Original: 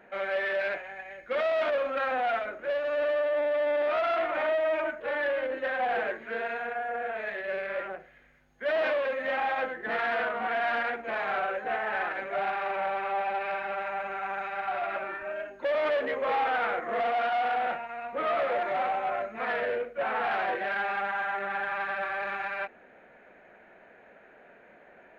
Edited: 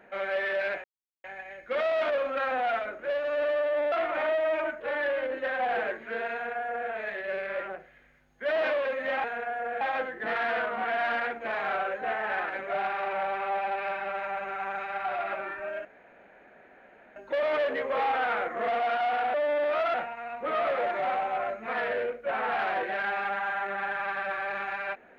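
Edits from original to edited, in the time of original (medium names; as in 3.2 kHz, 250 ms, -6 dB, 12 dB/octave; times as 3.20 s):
0.84 s: insert silence 0.40 s
3.52–4.12 s: move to 17.66 s
6.53–7.10 s: copy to 9.44 s
15.48 s: insert room tone 1.31 s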